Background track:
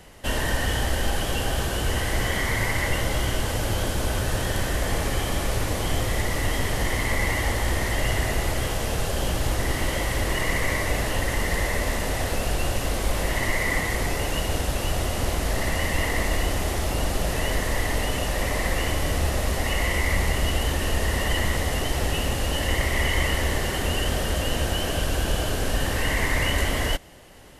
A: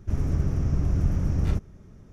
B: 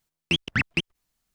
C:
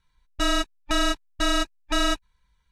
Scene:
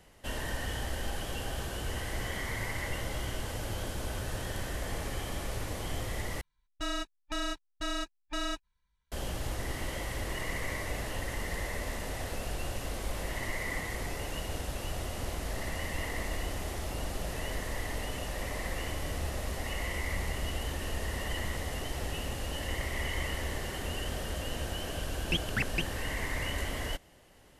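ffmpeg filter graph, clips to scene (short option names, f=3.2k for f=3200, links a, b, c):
-filter_complex "[0:a]volume=-11dB,asplit=2[a][b];[a]atrim=end=6.414[c];[3:a]atrim=end=2.71,asetpts=PTS-STARTPTS,volume=-11.5dB[d];[b]atrim=start=9.116[e];[2:a]atrim=end=1.34,asetpts=PTS-STARTPTS,volume=-7.5dB,afade=t=in:d=0.004:c=hsin,afade=t=out:st=1.336:d=0.004:c=hsin,adelay=25010[f];[c][d]acrossfade=d=0.004:c1=hsin:c2=hsin[g];[g][e]acrossfade=d=0.004:c1=hsin:c2=hsin[h];[h][f]amix=inputs=2:normalize=0"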